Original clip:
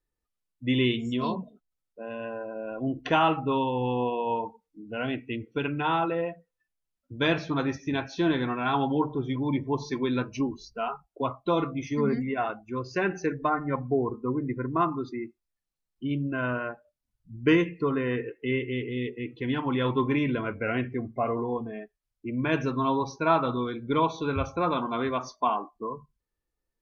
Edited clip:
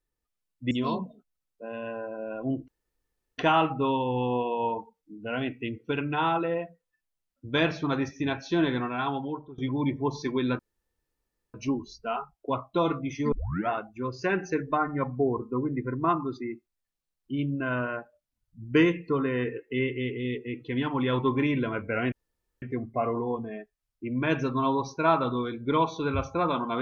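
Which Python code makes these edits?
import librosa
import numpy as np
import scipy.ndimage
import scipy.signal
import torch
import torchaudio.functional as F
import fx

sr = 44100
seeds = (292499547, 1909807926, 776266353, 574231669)

y = fx.edit(x, sr, fx.cut(start_s=0.71, length_s=0.37),
    fx.insert_room_tone(at_s=3.05, length_s=0.7),
    fx.fade_out_to(start_s=8.43, length_s=0.82, floor_db=-20.5),
    fx.insert_room_tone(at_s=10.26, length_s=0.95),
    fx.tape_start(start_s=12.04, length_s=0.37),
    fx.insert_room_tone(at_s=20.84, length_s=0.5), tone=tone)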